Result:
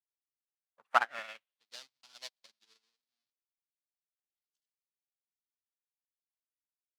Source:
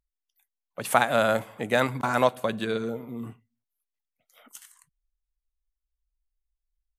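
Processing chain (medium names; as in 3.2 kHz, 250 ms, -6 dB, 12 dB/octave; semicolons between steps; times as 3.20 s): square wave that keeps the level; band-pass sweep 430 Hz -> 4.5 kHz, 0.26–1.70 s; upward expansion 2.5:1, over -47 dBFS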